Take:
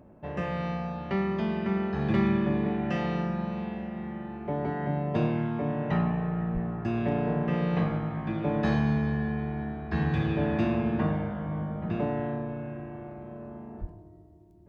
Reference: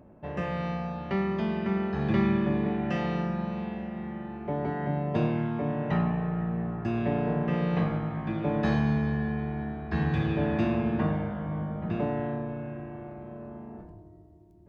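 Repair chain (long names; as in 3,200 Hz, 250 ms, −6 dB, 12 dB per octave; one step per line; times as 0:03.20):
clipped peaks rebuilt −15.5 dBFS
0:06.53–0:06.65: high-pass filter 140 Hz 24 dB per octave
0:13.80–0:13.92: high-pass filter 140 Hz 24 dB per octave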